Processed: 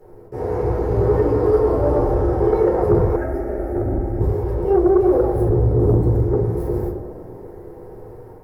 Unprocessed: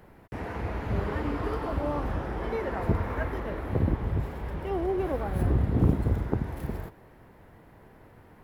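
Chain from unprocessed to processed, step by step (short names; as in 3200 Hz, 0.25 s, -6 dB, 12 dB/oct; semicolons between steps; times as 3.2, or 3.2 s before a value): EQ curve 110 Hz 0 dB, 150 Hz -7 dB, 290 Hz -5 dB, 420 Hz +6 dB, 650 Hz -5 dB, 3000 Hz -28 dB, 5000 Hz -16 dB; on a send: tape echo 0.107 s, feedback 85%, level -9 dB, low-pass 1200 Hz; on the sum: shoebox room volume 210 m³, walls furnished, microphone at 4.2 m; AGC gain up to 5 dB; tilt +2 dB/oct; sine folder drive 8 dB, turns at -1 dBFS; 3.16–4.21 fixed phaser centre 690 Hz, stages 8; core saturation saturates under 61 Hz; gain -7 dB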